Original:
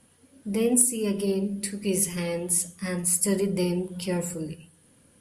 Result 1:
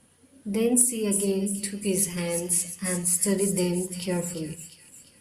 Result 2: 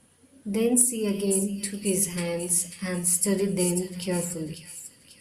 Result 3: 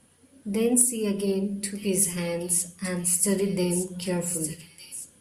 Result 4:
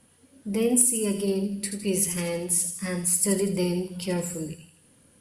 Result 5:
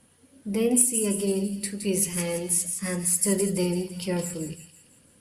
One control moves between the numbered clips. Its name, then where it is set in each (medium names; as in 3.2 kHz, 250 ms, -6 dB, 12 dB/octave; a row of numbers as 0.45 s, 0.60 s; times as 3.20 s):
feedback echo behind a high-pass, time: 349 ms, 542 ms, 1211 ms, 80 ms, 167 ms